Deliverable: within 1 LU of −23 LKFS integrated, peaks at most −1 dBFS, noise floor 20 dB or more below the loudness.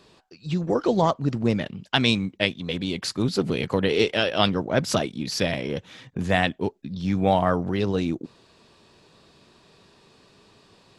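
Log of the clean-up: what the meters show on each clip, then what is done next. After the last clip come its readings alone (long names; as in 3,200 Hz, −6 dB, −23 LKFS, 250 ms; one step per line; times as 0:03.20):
integrated loudness −24.5 LKFS; sample peak −4.0 dBFS; target loudness −23.0 LKFS
→ level +1.5 dB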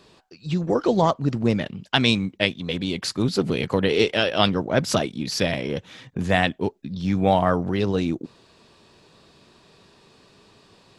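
integrated loudness −23.0 LKFS; sample peak −2.5 dBFS; background noise floor −56 dBFS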